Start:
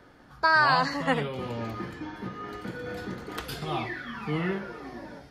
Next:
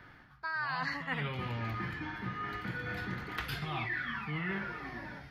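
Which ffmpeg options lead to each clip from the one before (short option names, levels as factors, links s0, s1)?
-af "equalizer=f=125:t=o:w=1:g=4,equalizer=f=250:t=o:w=1:g=-4,equalizer=f=500:t=o:w=1:g=-9,equalizer=f=2000:t=o:w=1:g=7,equalizer=f=8000:t=o:w=1:g=-11,areverse,acompressor=threshold=0.0251:ratio=16,areverse"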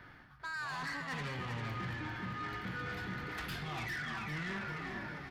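-filter_complex "[0:a]asoftclip=type=tanh:threshold=0.015,asplit=2[s0][s1];[s1]aecho=0:1:398|796|1194|1592|1990:0.473|0.185|0.072|0.0281|0.0109[s2];[s0][s2]amix=inputs=2:normalize=0"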